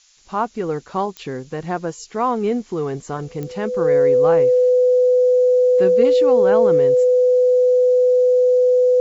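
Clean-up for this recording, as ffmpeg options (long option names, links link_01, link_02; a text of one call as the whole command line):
ffmpeg -i in.wav -af "adeclick=threshold=4,bandreject=frequency=500:width=30,afftdn=noise_reduction=22:noise_floor=-42" out.wav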